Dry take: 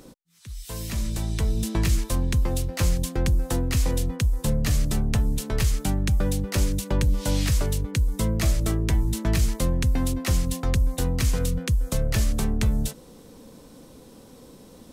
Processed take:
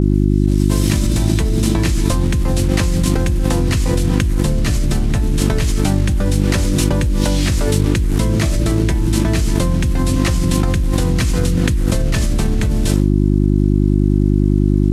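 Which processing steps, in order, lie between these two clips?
one-bit delta coder 64 kbps, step -35.5 dBFS; gated-style reverb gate 90 ms falling, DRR 11 dB; expander -30 dBFS; mains buzz 50 Hz, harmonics 7, -29 dBFS -3 dB/octave; level flattener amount 100%; trim +1 dB

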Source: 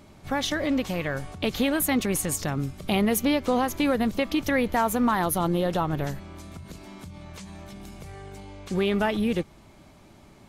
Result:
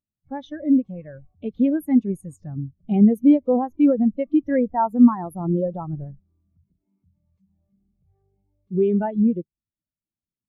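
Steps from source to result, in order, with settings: spectral contrast expander 2.5:1; trim +7 dB

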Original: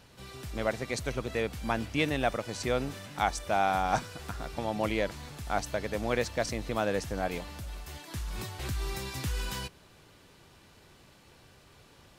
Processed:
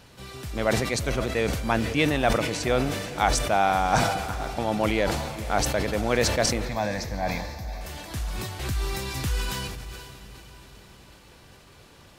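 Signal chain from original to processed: 6.65–7.81 s: static phaser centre 2 kHz, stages 8; echo that smears into a reverb 495 ms, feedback 49%, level -14 dB; decay stretcher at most 42 dB/s; trim +5 dB

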